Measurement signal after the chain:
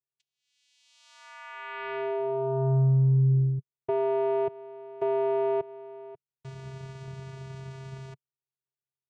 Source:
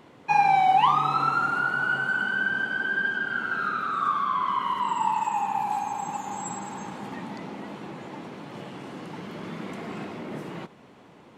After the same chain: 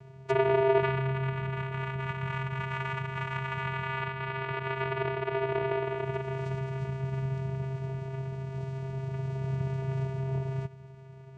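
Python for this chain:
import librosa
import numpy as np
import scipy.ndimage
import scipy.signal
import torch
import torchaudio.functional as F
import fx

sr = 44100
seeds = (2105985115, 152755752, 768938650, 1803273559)

y = fx.env_lowpass_down(x, sr, base_hz=730.0, full_db=-21.5)
y = fx.vocoder(y, sr, bands=4, carrier='square', carrier_hz=133.0)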